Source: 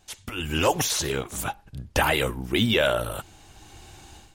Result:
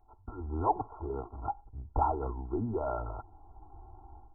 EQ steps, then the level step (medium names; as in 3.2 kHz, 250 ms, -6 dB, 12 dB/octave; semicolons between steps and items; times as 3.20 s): brick-wall FIR low-pass 1.4 kHz; peaking EQ 280 Hz -9.5 dB 2.4 oct; static phaser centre 820 Hz, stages 8; +2.0 dB